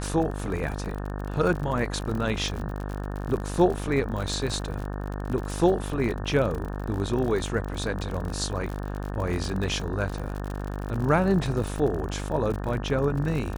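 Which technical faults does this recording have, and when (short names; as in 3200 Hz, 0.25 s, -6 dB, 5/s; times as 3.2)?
buzz 50 Hz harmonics 36 -32 dBFS
crackle 51/s -31 dBFS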